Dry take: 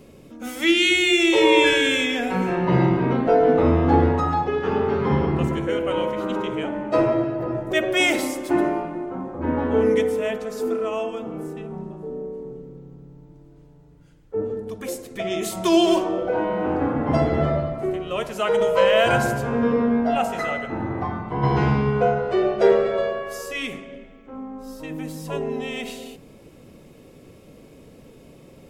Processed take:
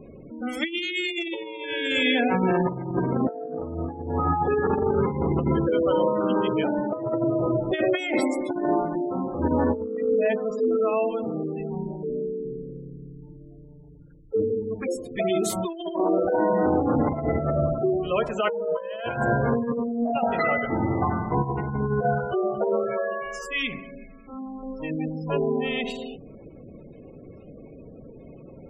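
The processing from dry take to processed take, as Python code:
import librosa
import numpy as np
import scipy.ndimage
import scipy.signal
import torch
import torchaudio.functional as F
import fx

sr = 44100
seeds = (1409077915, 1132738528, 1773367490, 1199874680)

y = fx.spec_gate(x, sr, threshold_db=-20, keep='strong')
y = fx.peak_eq(y, sr, hz=450.0, db=-9.0, octaves=1.3, at=(22.03, 24.63))
y = fx.over_compress(y, sr, threshold_db=-23.0, ratio=-0.5)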